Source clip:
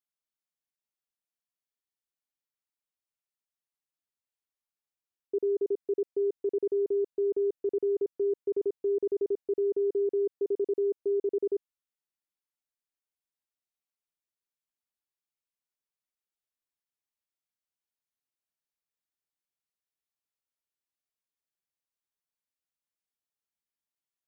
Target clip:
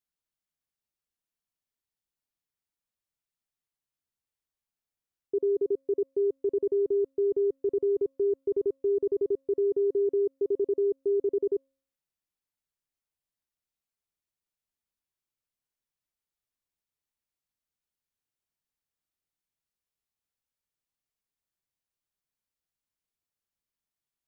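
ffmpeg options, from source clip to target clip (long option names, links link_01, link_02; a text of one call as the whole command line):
ffmpeg -i in.wav -af "lowshelf=frequency=190:gain=10,bandreject=frequency=270.1:width_type=h:width=4,bandreject=frequency=540.2:width_type=h:width=4,bandreject=frequency=810.3:width_type=h:width=4,bandreject=frequency=1080.4:width_type=h:width=4,bandreject=frequency=1350.5:width_type=h:width=4,bandreject=frequency=1620.6:width_type=h:width=4,bandreject=frequency=1890.7:width_type=h:width=4,bandreject=frequency=2160.8:width_type=h:width=4,bandreject=frequency=2430.9:width_type=h:width=4,bandreject=frequency=2701:width_type=h:width=4,bandreject=frequency=2971.1:width_type=h:width=4,bandreject=frequency=3241.2:width_type=h:width=4,bandreject=frequency=3511.3:width_type=h:width=4,bandreject=frequency=3781.4:width_type=h:width=4" out.wav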